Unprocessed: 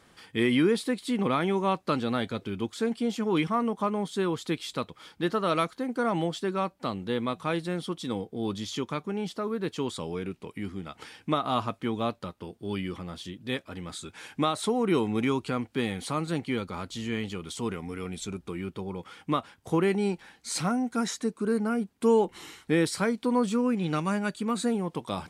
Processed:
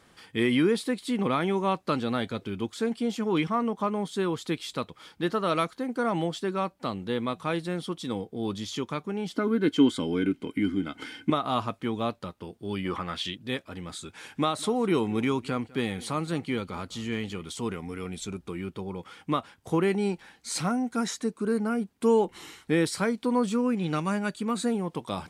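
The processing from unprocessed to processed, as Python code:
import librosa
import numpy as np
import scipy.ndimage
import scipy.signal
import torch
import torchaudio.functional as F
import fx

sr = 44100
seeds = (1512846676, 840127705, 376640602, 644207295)

y = fx.peak_eq(x, sr, hz=10000.0, db=-5.5, octaves=0.49, at=(3.32, 3.9))
y = fx.small_body(y, sr, hz=(280.0, 1500.0, 2100.0, 3100.0), ring_ms=45, db=16, at=(9.33, 11.3))
y = fx.peak_eq(y, sr, hz=fx.line((12.84, 760.0), (13.34, 3500.0)), db=14.0, octaves=1.9, at=(12.84, 13.34), fade=0.02)
y = fx.echo_single(y, sr, ms=202, db=-22.0, at=(14.02, 17.43))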